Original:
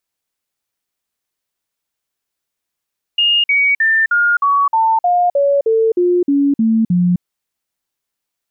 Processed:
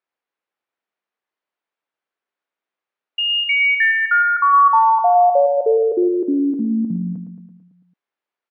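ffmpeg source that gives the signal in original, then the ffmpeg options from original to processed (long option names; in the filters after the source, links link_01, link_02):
-f lavfi -i "aevalsrc='0.316*clip(min(mod(t,0.31),0.26-mod(t,0.31))/0.005,0,1)*sin(2*PI*2840*pow(2,-floor(t/0.31)/3)*mod(t,0.31))':duration=4.03:sample_rate=44100"
-af "highpass=320,lowpass=2100,aecho=1:1:111|222|333|444|555|666|777:0.447|0.259|0.15|0.0872|0.0505|0.0293|0.017"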